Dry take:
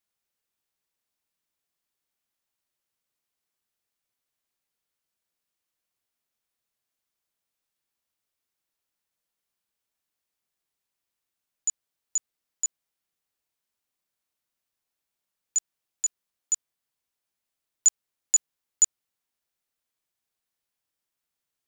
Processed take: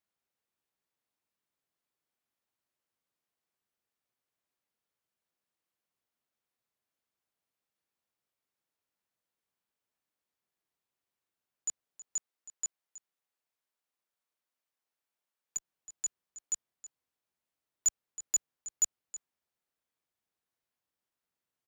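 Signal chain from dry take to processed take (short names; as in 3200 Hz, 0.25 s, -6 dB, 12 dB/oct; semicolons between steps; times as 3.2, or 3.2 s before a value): HPF 85 Hz 6 dB/oct, from 12.17 s 490 Hz, from 15.57 s 57 Hz; high shelf 2400 Hz -8.5 dB; echo 0.321 s -16 dB; core saturation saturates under 3600 Hz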